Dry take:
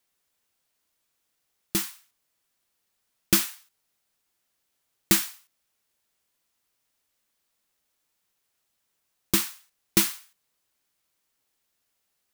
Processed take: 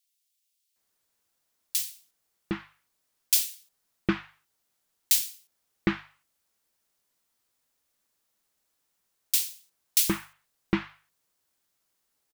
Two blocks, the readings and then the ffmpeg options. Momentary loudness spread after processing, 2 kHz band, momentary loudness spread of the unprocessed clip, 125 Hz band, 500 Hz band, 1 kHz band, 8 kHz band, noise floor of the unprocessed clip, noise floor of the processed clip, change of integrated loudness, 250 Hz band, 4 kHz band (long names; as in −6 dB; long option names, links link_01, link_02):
14 LU, −2.0 dB, 13 LU, −0.5 dB, 0.0 dB, −0.5 dB, 0.0 dB, −77 dBFS, −77 dBFS, −3.0 dB, 0.0 dB, −1.5 dB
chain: -filter_complex "[0:a]bandreject=frequency=50:width_type=h:width=6,bandreject=frequency=100:width_type=h:width=6,bandreject=frequency=150:width_type=h:width=6,acrossover=split=2600[link_01][link_02];[link_01]adelay=760[link_03];[link_03][link_02]amix=inputs=2:normalize=0"